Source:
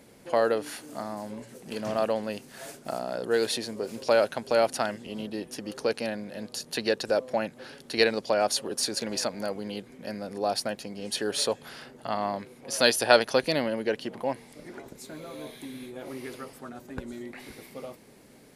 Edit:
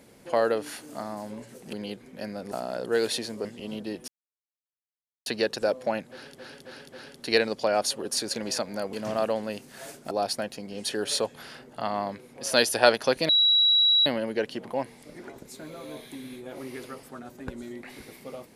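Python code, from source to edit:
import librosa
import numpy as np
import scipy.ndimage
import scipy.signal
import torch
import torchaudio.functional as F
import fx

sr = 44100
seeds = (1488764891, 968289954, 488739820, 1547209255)

y = fx.edit(x, sr, fx.swap(start_s=1.73, length_s=1.18, other_s=9.59, other_length_s=0.79),
    fx.cut(start_s=3.84, length_s=1.08),
    fx.silence(start_s=5.55, length_s=1.18),
    fx.repeat(start_s=7.58, length_s=0.27, count=4),
    fx.insert_tone(at_s=13.56, length_s=0.77, hz=3890.0, db=-17.0), tone=tone)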